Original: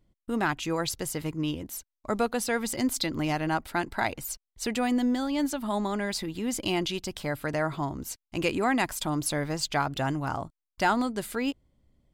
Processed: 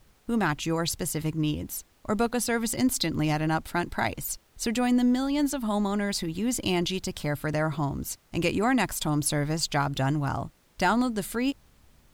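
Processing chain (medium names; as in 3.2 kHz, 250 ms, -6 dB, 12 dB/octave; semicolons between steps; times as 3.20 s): tone controls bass +6 dB, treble +3 dB; added noise pink -63 dBFS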